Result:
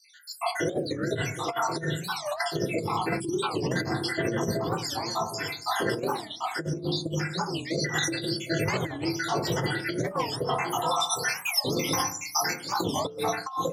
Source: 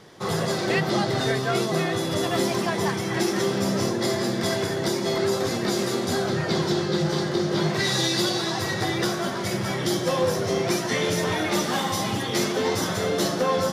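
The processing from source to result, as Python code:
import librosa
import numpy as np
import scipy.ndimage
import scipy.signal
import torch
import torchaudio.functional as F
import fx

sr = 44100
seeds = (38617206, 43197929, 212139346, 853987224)

y = fx.spec_dropout(x, sr, seeds[0], share_pct=84)
y = scipy.signal.sosfilt(scipy.signal.butter(2, 140.0, 'highpass', fs=sr, output='sos'), y)
y = fx.peak_eq(y, sr, hz=260.0, db=-10.0, octaves=0.83)
y = fx.notch(y, sr, hz=610.0, q=19.0)
y = y + 10.0 ** (-13.5 / 20.0) * np.pad(y, (int(757 * sr / 1000.0), 0))[:len(y)]
y = fx.rev_fdn(y, sr, rt60_s=0.48, lf_ratio=1.5, hf_ratio=0.25, size_ms=20.0, drr_db=-6.5)
y = fx.spec_box(y, sr, start_s=3.2, length_s=0.23, low_hz=400.0, high_hz=2300.0, gain_db=-24)
y = 10.0 ** (-9.0 / 20.0) * np.tanh(y / 10.0 ** (-9.0 / 20.0))
y = fx.over_compress(y, sr, threshold_db=-27.0, ratio=-0.5)
y = fx.high_shelf(y, sr, hz=6900.0, db=11.5, at=(11.0, 12.56))
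y = fx.record_warp(y, sr, rpm=45.0, depth_cents=250.0)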